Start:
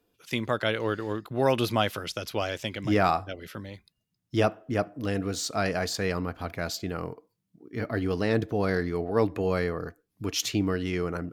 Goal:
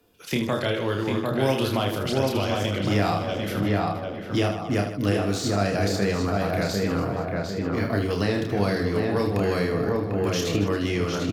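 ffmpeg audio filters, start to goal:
ffmpeg -i in.wav -filter_complex "[0:a]asplit=2[link_01][link_02];[link_02]adelay=746,lowpass=frequency=1400:poles=1,volume=-4dB,asplit=2[link_03][link_04];[link_04]adelay=746,lowpass=frequency=1400:poles=1,volume=0.36,asplit=2[link_05][link_06];[link_06]adelay=746,lowpass=frequency=1400:poles=1,volume=0.36,asplit=2[link_07][link_08];[link_08]adelay=746,lowpass=frequency=1400:poles=1,volume=0.36,asplit=2[link_09][link_10];[link_10]adelay=746,lowpass=frequency=1400:poles=1,volume=0.36[link_11];[link_03][link_05][link_07][link_09][link_11]amix=inputs=5:normalize=0[link_12];[link_01][link_12]amix=inputs=2:normalize=0,acrossover=split=200|900|2900[link_13][link_14][link_15][link_16];[link_13]acompressor=threshold=-38dB:ratio=4[link_17];[link_14]acompressor=threshold=-36dB:ratio=4[link_18];[link_15]acompressor=threshold=-46dB:ratio=4[link_19];[link_16]acompressor=threshold=-45dB:ratio=4[link_20];[link_17][link_18][link_19][link_20]amix=inputs=4:normalize=0,asplit=2[link_21][link_22];[link_22]aecho=0:1:30|78|154.8|277.7|474.3:0.631|0.398|0.251|0.158|0.1[link_23];[link_21][link_23]amix=inputs=2:normalize=0,volume=8.5dB" out.wav

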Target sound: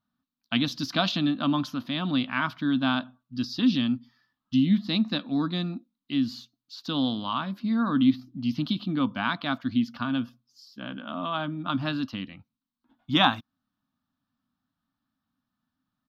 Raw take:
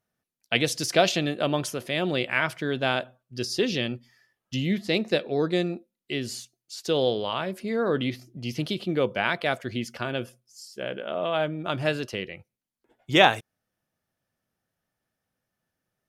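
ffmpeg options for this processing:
ffmpeg -i in.wav -af "firequalizer=gain_entry='entry(150,0);entry(270,13);entry(390,-21);entry(680,-6);entry(1100,7);entry(2000,-9);entry(3800,4);entry(8900,-29);entry(13000,-7)':delay=0.05:min_phase=1,volume=-1.5dB" out.wav

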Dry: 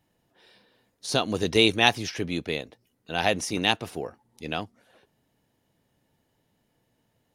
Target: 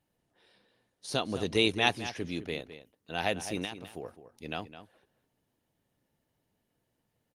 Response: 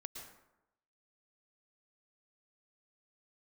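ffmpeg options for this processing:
-filter_complex "[0:a]asettb=1/sr,asplit=3[link_01][link_02][link_03];[link_01]atrim=end=3.644[link_04];[link_02]atrim=start=3.64:end=4.05,asetpts=PTS-STARTPTS,afade=type=in:duration=0.004:curve=qsin,afade=type=out:start_time=0.406:duration=0.004:curve=qsin,acompressor=threshold=-29dB:ratio=12[link_05];[link_03]atrim=start=4.046[link_06];[link_04][link_05]acrossfade=duration=0.004:curve1=hsin:curve2=qsin[link_07];[link_07][link_06]acrossfade=duration=0.004:curve1=qsin:curve2=hsin,asplit=2[link_08][link_09];[link_09]adelay=209.9,volume=-12dB,highshelf=frequency=4000:gain=-4.72[link_10];[link_08][link_10]amix=inputs=2:normalize=0,volume=-6dB" -ar 48000 -c:a libopus -b:a 32k

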